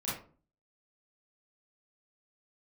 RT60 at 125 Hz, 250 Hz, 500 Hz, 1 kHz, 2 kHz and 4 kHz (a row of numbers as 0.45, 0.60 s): 0.60, 0.55, 0.45, 0.40, 0.30, 0.25 s